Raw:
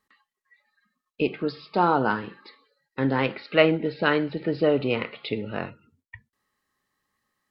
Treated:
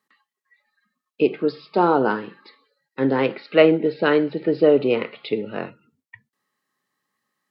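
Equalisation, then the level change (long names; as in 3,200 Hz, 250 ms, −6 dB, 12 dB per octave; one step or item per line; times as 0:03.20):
dynamic equaliser 410 Hz, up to +8 dB, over −35 dBFS, Q 1.2
high-pass filter 130 Hz 24 dB per octave
0.0 dB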